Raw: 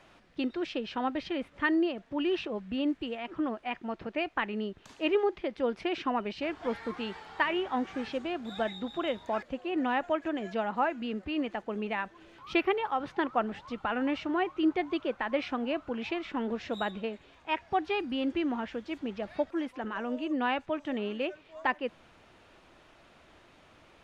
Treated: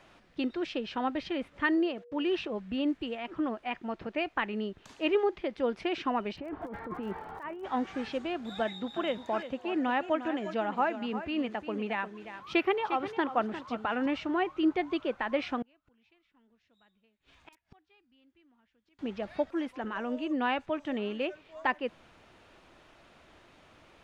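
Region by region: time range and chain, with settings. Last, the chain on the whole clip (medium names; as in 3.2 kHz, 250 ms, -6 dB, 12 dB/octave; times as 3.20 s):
1.75–2.28 s: gate -53 dBFS, range -32 dB + high-pass 140 Hz 6 dB/octave + whistle 480 Hz -51 dBFS
6.35–7.63 s: low-pass 1.2 kHz + compressor with a negative ratio -39 dBFS + crackle 49 per s -48 dBFS
8.61–14.06 s: high-pass 78 Hz + delay 352 ms -11.5 dB
15.62–18.99 s: peaking EQ 530 Hz -9.5 dB 2.4 oct + integer overflow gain 22.5 dB + inverted gate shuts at -40 dBFS, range -29 dB
whole clip: none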